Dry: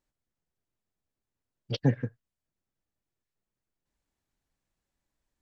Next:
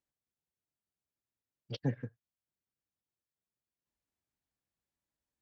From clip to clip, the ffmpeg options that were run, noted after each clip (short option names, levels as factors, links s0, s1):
-af "highpass=59,volume=0.376"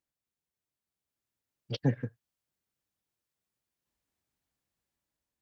-af "dynaudnorm=f=450:g=5:m=1.88"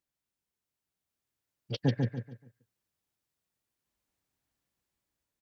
-af "aecho=1:1:143|286|429|572:0.596|0.185|0.0572|0.0177"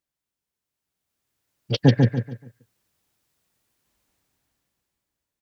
-af "dynaudnorm=f=230:g=11:m=3.76,volume=1.19"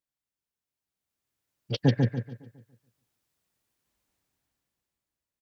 -filter_complex "[0:a]asplit=2[s0][s1];[s1]adelay=553.9,volume=0.0316,highshelf=f=4000:g=-12.5[s2];[s0][s2]amix=inputs=2:normalize=0,volume=0.473"